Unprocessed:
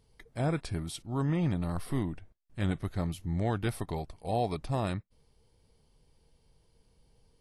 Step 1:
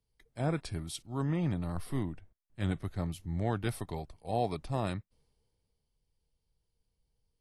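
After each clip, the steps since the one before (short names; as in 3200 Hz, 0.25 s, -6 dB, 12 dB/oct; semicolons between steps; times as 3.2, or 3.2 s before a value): three-band expander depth 40%; gain -2.5 dB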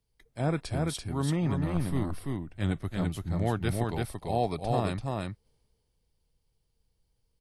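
echo 0.337 s -3 dB; gain +3 dB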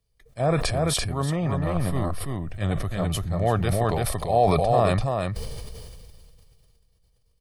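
dynamic EQ 750 Hz, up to +6 dB, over -42 dBFS, Q 0.8; comb 1.7 ms, depth 45%; sustainer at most 22 dB/s; gain +1.5 dB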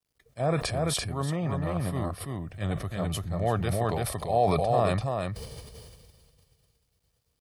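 HPF 66 Hz 12 dB/oct; requantised 12-bit, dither none; gain -4 dB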